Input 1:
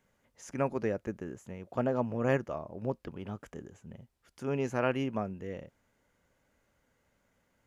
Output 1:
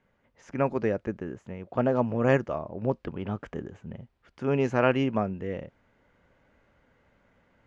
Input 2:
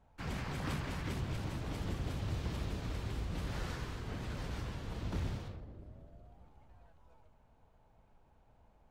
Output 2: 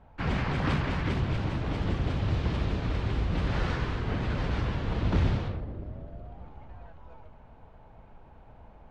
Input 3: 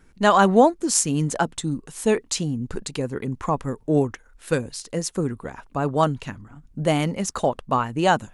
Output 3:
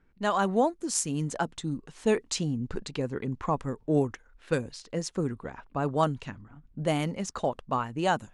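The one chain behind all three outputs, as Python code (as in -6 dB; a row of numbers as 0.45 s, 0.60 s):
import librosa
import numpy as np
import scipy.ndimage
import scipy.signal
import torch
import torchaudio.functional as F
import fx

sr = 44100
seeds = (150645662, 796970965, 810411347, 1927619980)

y = fx.env_lowpass(x, sr, base_hz=2900.0, full_db=-16.5)
y = fx.rider(y, sr, range_db=4, speed_s=2.0)
y = y * 10.0 ** (-30 / 20.0) / np.sqrt(np.mean(np.square(y)))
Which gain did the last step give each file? +5.0 dB, +10.5 dB, -7.0 dB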